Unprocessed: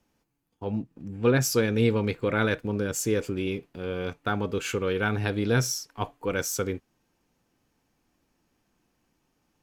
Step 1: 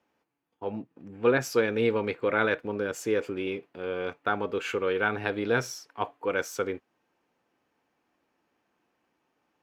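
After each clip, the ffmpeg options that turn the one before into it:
ffmpeg -i in.wav -af "highpass=66,bass=frequency=250:gain=-14,treble=frequency=4000:gain=-14,volume=2dB" out.wav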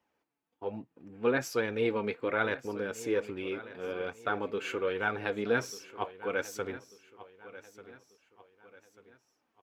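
ffmpeg -i in.wav -af "flanger=delay=1:depth=3.7:regen=52:speed=1.2:shape=sinusoidal,aecho=1:1:1191|2382|3573:0.15|0.0598|0.0239" out.wav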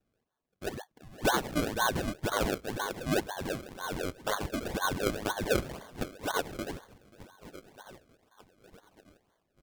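ffmpeg -i in.wav -af "afftfilt=real='real(if(between(b,1,1012),(2*floor((b-1)/92)+1)*92-b,b),0)':imag='imag(if(between(b,1,1012),(2*floor((b-1)/92)+1)*92-b,b),0)*if(between(b,1,1012),-1,1)':win_size=2048:overlap=0.75,highshelf=frequency=7600:width_type=q:width=3:gain=-9.5,acrusher=samples=33:mix=1:aa=0.000001:lfo=1:lforange=33:lforate=2" out.wav

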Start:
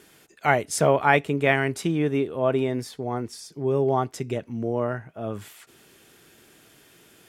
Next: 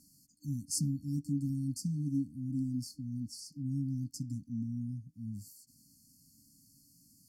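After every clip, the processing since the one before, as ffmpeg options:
ffmpeg -i in.wav -af "afftfilt=real='re*(1-between(b*sr/4096,300,4300))':imag='im*(1-between(b*sr/4096,300,4300))':win_size=4096:overlap=0.75,volume=-5.5dB" out.wav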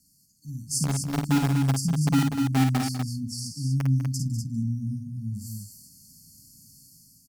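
ffmpeg -i in.wav -filter_complex "[0:a]acrossover=split=240|1400|4600[link_01][link_02][link_03][link_04];[link_02]acrusher=bits=5:mix=0:aa=0.000001[link_05];[link_01][link_05][link_03][link_04]amix=inputs=4:normalize=0,dynaudnorm=framelen=530:gausssize=3:maxgain=10dB,aecho=1:1:52.48|198.3|244.9:0.562|0.251|0.501" out.wav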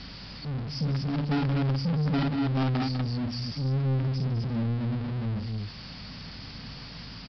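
ffmpeg -i in.wav -af "aeval=exprs='val(0)+0.5*0.0282*sgn(val(0))':channel_layout=same,aeval=exprs='val(0)+0.00398*(sin(2*PI*50*n/s)+sin(2*PI*2*50*n/s)/2+sin(2*PI*3*50*n/s)/3+sin(2*PI*4*50*n/s)/4+sin(2*PI*5*50*n/s)/5)':channel_layout=same,aresample=11025,asoftclip=type=tanh:threshold=-22.5dB,aresample=44100" out.wav

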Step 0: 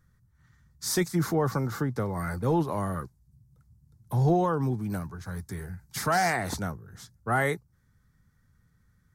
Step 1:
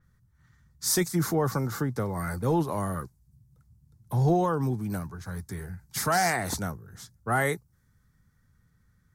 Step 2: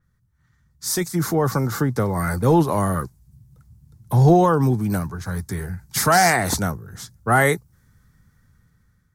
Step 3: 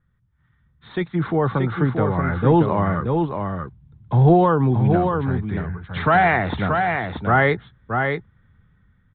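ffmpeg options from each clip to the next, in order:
ffmpeg -i in.wav -af "adynamicequalizer=threshold=0.00398:dfrequency=5300:dqfactor=0.7:tfrequency=5300:tqfactor=0.7:attack=5:release=100:ratio=0.375:range=3:mode=boostabove:tftype=highshelf" out.wav
ffmpeg -i in.wav -af "dynaudnorm=framelen=500:gausssize=5:maxgain=12dB,volume=-2dB" out.wav
ffmpeg -i in.wav -filter_complex "[0:a]asplit=2[link_01][link_02];[link_02]aecho=0:1:629:0.562[link_03];[link_01][link_03]amix=inputs=2:normalize=0,aresample=8000,aresample=44100" out.wav

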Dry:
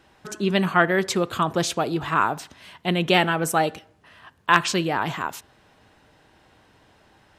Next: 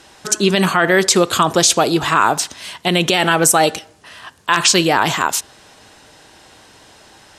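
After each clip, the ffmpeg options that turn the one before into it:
ffmpeg -i in.wav -af "lowpass=9900,bass=frequency=250:gain=-5,treble=frequency=4000:gain=13,alimiter=level_in=11.5dB:limit=-1dB:release=50:level=0:latency=1,volume=-1dB" out.wav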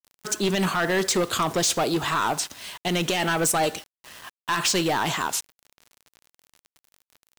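ffmpeg -i in.wav -af "acrusher=bits=5:mix=0:aa=0.000001,volume=11.5dB,asoftclip=hard,volume=-11.5dB,volume=-7dB" out.wav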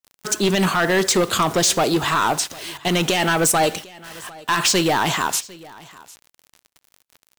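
ffmpeg -i in.wav -af "aecho=1:1:751:0.0794,volume=5dB" out.wav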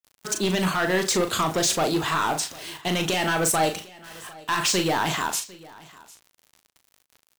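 ffmpeg -i in.wav -filter_complex "[0:a]asplit=2[link_01][link_02];[link_02]adelay=38,volume=-7dB[link_03];[link_01][link_03]amix=inputs=2:normalize=0,volume=-5.5dB" out.wav

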